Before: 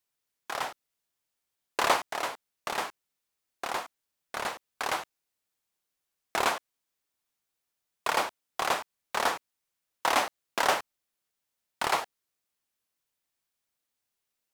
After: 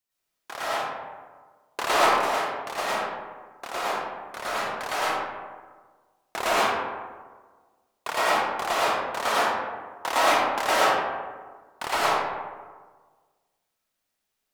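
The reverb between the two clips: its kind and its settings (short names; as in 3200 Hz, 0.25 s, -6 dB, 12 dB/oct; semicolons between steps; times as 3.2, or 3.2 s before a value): digital reverb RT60 1.5 s, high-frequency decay 0.45×, pre-delay 70 ms, DRR -9.5 dB; gain -3.5 dB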